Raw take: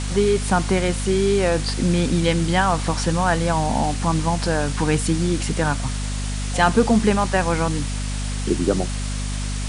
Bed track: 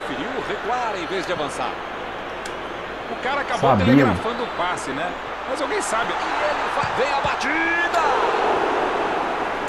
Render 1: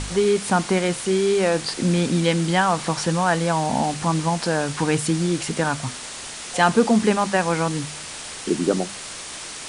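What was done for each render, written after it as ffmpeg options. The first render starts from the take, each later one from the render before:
-af "bandreject=f=50:t=h:w=4,bandreject=f=100:t=h:w=4,bandreject=f=150:t=h:w=4,bandreject=f=200:t=h:w=4,bandreject=f=250:t=h:w=4"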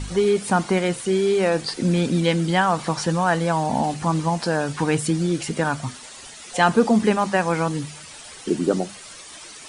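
-af "afftdn=nr=11:nf=-35"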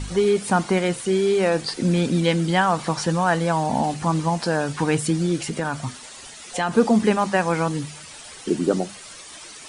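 -filter_complex "[0:a]asettb=1/sr,asplit=3[a][b][c];[a]atrim=end=5.464[d];[b]atrim=start=5.46:end=6.73,asetpts=PTS-STARTPTS,afade=t=in:d=0.004:c=qsin,afade=t=out:st=1.266:d=0.004:c=qsin,acompressor=threshold=-21dB:ratio=2.5:attack=3.2:release=140:knee=1:detection=peak[e];[c]atrim=start=6.726[f];[d][e]acrossfade=d=0.004:c1=hsin:c2=qsin[g];[g][f]acrossfade=d=0.004:c1=qsin:c2=hsin"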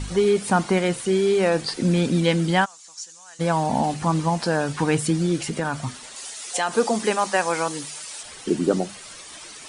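-filter_complex "[0:a]asplit=3[a][b][c];[a]afade=t=out:st=2.64:d=0.02[d];[b]bandpass=f=6.8k:t=q:w=3.9,afade=t=in:st=2.64:d=0.02,afade=t=out:st=3.39:d=0.02[e];[c]afade=t=in:st=3.39:d=0.02[f];[d][e][f]amix=inputs=3:normalize=0,asettb=1/sr,asplit=3[g][h][i];[g]atrim=end=6.164[j];[h]atrim=start=6.16:end=8.23,asetpts=PTS-STARTPTS,afade=t=in:d=0.004:c=qsin,afade=t=out:st=2.066:d=0.004:c=qsin,bass=f=250:g=-15,treble=f=4k:g=7[k];[i]atrim=start=8.226[l];[j][k]acrossfade=d=0.004:c1=hsin:c2=qsin[m];[m][l]acrossfade=d=0.004:c1=qsin:c2=hsin"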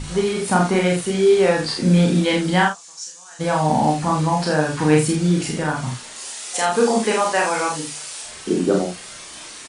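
-filter_complex "[0:a]asplit=2[a][b];[b]adelay=33,volume=-2.5dB[c];[a][c]amix=inputs=2:normalize=0,asplit=2[d][e];[e]aecho=0:1:46|63:0.596|0.237[f];[d][f]amix=inputs=2:normalize=0"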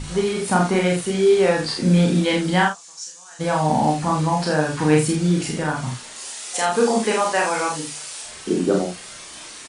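-af "volume=-1dB"

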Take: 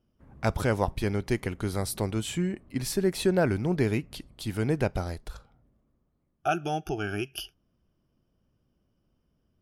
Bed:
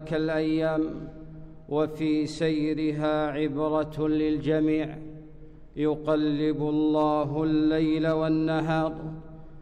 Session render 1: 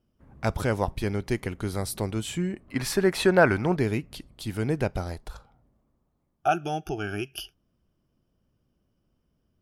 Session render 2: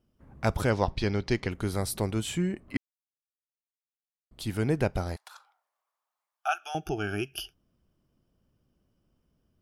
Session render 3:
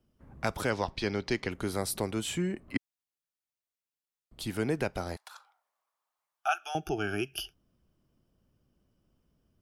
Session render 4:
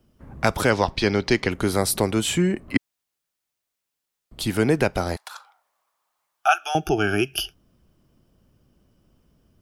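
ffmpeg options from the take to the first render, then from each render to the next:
-filter_complex "[0:a]asettb=1/sr,asplit=3[a][b][c];[a]atrim=end=2.684[d];[b]atrim=start=2.68:end=3.77,asetpts=PTS-STARTPTS,afade=t=in:d=0.004:c=qsin,afade=t=out:st=1.086:d=0.004:c=qsin,equalizer=f=1.3k:t=o:w=2.5:g=11.5[e];[c]atrim=start=3.766[f];[d][e]acrossfade=d=0.004:c1=hsin:c2=qsin[g];[g][f]acrossfade=d=0.004:c1=qsin:c2=hsin,asettb=1/sr,asplit=3[h][i][j];[h]atrim=end=5.114[k];[i]atrim=start=5.11:end=6.58,asetpts=PTS-STARTPTS,afade=t=in:d=0.004:c=qsin,afade=t=out:st=1.466:d=0.004:c=qsin,equalizer=f=860:t=o:w=0.77:g=6[l];[j]atrim=start=6.576[m];[k][l]acrossfade=d=0.004:c1=hsin:c2=qsin[n];[n][m]acrossfade=d=0.004:c1=qsin:c2=hsin"
-filter_complex "[0:a]asettb=1/sr,asplit=3[a][b][c];[a]atrim=end=0.704[d];[b]atrim=start=0.7:end=1.51,asetpts=PTS-STARTPTS,afade=t=in:d=0.004:c=qsin,afade=t=out:st=0.806:d=0.004:c=qsin,lowpass=f=4.8k:t=q:w=2.1[e];[c]atrim=start=1.506[f];[d][e]acrossfade=d=0.004:c1=hsin:c2=qsin[g];[g][f]acrossfade=d=0.004:c1=qsin:c2=hsin,asettb=1/sr,asplit=3[h][i][j];[h]atrim=end=5.164[k];[i]atrim=start=5.16:end=6.75,asetpts=PTS-STARTPTS,afade=t=in:d=0.004:c=qsin,afade=t=out:st=1.586:d=0.004:c=qsin,highpass=f=880:w=0.5412,highpass=f=880:w=1.3066[l];[j]atrim=start=6.746[m];[k][l]acrossfade=d=0.004:c1=hsin:c2=qsin[n];[n][m]acrossfade=d=0.004:c1=qsin:c2=hsin,asplit=3[o][p][q];[o]atrim=end=2.77,asetpts=PTS-STARTPTS,afade=t=out:st=2.766:d=0.004:c=hsin[r];[p]atrim=start=2.77:end=4.31,asetpts=PTS-STARTPTS,volume=0[s];[q]atrim=start=4.31,asetpts=PTS-STARTPTS,afade=t=in:d=0.004:c=hsin[t];[r][s][t]concat=n=3:v=0:a=1"
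-filter_complex "[0:a]acrossover=split=190|1100[a][b][c];[a]acompressor=threshold=-40dB:ratio=6[d];[b]alimiter=limit=-21dB:level=0:latency=1:release=272[e];[d][e][c]amix=inputs=3:normalize=0"
-af "volume=10.5dB"

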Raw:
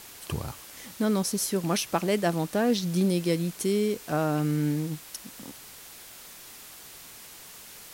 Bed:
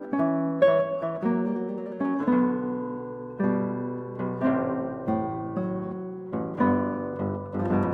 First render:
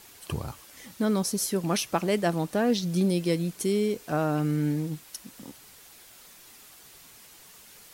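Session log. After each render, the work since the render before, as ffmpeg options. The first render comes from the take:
-af "afftdn=nr=6:nf=-47"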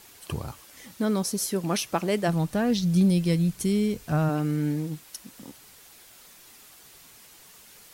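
-filter_complex "[0:a]asplit=3[a][b][c];[a]afade=t=out:st=2.27:d=0.02[d];[b]asubboost=boost=7.5:cutoff=140,afade=t=in:st=2.27:d=0.02,afade=t=out:st=4.28:d=0.02[e];[c]afade=t=in:st=4.28:d=0.02[f];[d][e][f]amix=inputs=3:normalize=0"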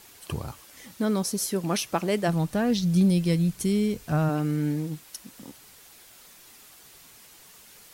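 -af anull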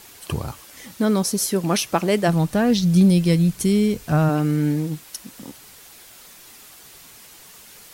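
-af "volume=6dB"

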